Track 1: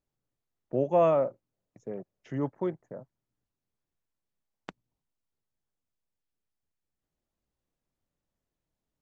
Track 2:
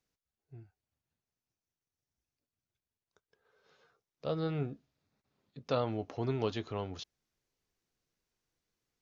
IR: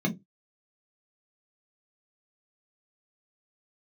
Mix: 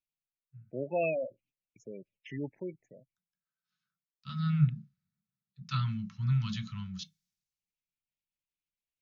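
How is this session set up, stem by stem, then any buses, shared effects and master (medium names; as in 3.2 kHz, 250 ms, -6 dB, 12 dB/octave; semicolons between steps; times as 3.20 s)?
-6.0 dB, 0.00 s, no send, gate -59 dBFS, range -12 dB; resonant high shelf 1.7 kHz +11.5 dB, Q 3; spectral gate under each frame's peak -15 dB strong; auto duck -19 dB, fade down 1.75 s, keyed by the second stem
-0.5 dB, 0.00 s, send -12 dB, elliptic band-stop 180–1200 Hz, stop band 40 dB; three bands expanded up and down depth 70%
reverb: on, RT60 0.15 s, pre-delay 3 ms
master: none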